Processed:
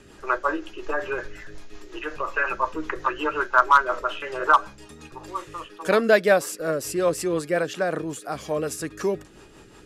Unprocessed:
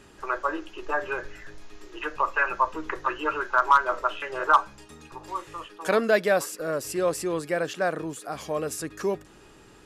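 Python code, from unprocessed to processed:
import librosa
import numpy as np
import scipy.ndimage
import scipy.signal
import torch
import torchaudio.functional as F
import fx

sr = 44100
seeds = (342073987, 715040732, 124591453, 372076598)

y = fx.rotary(x, sr, hz=5.5)
y = F.gain(torch.from_numpy(y), 5.0).numpy()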